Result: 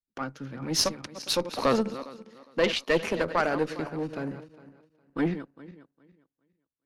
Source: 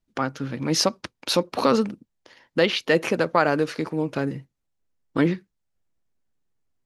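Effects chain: regenerating reverse delay 0.204 s, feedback 57%, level -11.5 dB; added harmonics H 2 -8 dB, 4 -26 dB, 6 -26 dB, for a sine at -4 dBFS; three-band expander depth 40%; gain -5.5 dB

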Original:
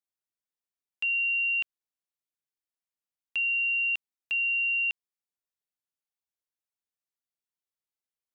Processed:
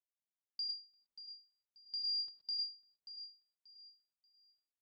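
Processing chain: Wiener smoothing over 41 samples; high shelf 2900 Hz -8 dB; speed mistake 45 rpm record played at 78 rpm; gate with hold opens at -30 dBFS; limiter -36.5 dBFS, peak gain reduction 7 dB; air absorption 160 m; on a send: feedback echo 0.584 s, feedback 28%, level -12.5 dB; on the sum: non-linear reverb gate 0.14 s rising, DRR 1 dB; ending taper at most 170 dB/s; gain +9.5 dB

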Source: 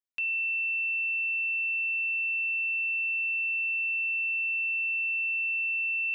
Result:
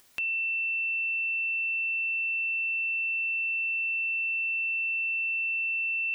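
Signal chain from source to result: upward compressor, threshold -34 dBFS

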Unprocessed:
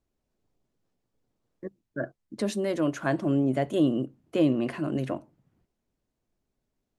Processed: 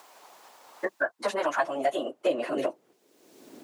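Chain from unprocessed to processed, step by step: plain phase-vocoder stretch 0.52×; high-pass sweep 900 Hz -> 250 Hz, 1.45–3.89; three-band squash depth 100%; gain +5.5 dB

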